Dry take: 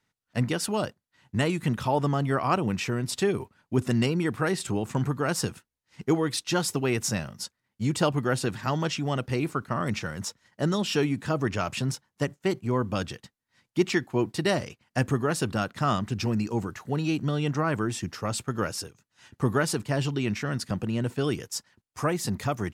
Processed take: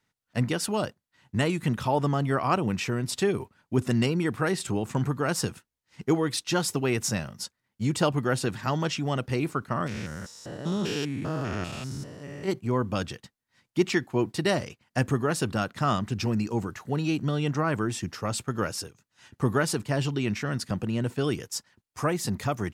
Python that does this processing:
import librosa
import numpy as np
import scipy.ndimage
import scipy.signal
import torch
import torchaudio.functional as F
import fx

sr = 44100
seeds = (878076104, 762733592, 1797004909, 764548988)

y = fx.spec_steps(x, sr, hold_ms=200, at=(9.86, 12.47), fade=0.02)